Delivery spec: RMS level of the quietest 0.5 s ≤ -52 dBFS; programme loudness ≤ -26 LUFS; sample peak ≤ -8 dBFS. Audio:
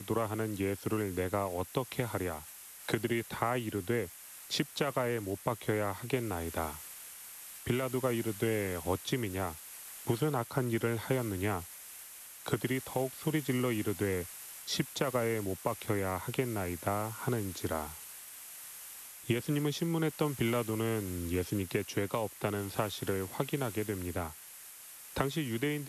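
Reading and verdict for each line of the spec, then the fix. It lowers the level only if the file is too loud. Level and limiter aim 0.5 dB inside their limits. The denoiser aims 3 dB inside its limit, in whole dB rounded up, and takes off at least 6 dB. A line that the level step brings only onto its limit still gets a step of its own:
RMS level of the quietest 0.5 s -50 dBFS: fail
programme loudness -34.5 LUFS: pass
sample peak -17.0 dBFS: pass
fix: noise reduction 6 dB, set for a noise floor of -50 dBFS

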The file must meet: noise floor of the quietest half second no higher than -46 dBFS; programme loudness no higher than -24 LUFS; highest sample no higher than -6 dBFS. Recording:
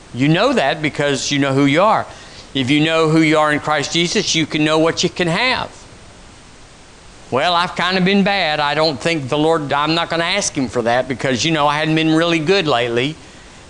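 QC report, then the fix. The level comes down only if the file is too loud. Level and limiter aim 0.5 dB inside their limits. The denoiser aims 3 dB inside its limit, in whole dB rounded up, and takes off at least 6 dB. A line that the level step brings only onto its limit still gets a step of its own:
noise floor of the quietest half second -41 dBFS: fail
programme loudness -16.0 LUFS: fail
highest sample -4.0 dBFS: fail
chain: trim -8.5 dB

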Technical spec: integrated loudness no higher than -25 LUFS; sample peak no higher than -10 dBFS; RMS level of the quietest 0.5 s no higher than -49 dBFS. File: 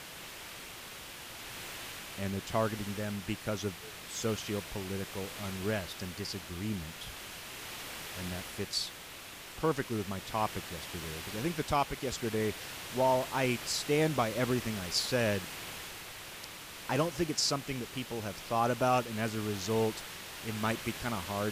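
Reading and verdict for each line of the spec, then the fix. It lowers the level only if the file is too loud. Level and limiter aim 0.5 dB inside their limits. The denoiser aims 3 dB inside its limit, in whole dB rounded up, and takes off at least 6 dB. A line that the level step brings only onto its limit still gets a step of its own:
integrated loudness -34.5 LUFS: pass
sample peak -16.5 dBFS: pass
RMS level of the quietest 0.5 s -47 dBFS: fail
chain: noise reduction 6 dB, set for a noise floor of -47 dBFS

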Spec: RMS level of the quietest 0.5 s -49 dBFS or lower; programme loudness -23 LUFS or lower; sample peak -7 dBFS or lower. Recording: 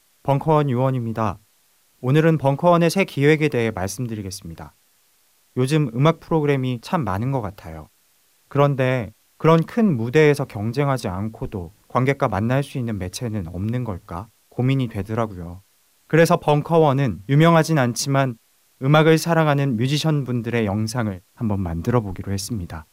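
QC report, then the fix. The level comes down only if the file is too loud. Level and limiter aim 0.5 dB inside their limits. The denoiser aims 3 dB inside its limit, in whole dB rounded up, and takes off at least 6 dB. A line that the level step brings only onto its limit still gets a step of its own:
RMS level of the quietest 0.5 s -60 dBFS: pass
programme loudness -20.5 LUFS: fail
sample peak -4.5 dBFS: fail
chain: trim -3 dB

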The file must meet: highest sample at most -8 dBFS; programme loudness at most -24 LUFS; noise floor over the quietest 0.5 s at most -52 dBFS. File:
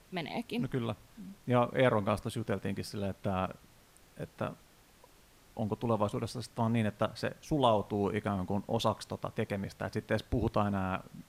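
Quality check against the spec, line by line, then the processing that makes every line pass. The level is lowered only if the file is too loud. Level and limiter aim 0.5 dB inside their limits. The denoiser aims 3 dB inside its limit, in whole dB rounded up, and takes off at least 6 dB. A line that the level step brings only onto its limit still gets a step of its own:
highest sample -13.5 dBFS: pass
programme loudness -33.5 LUFS: pass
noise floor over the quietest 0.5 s -61 dBFS: pass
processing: none needed

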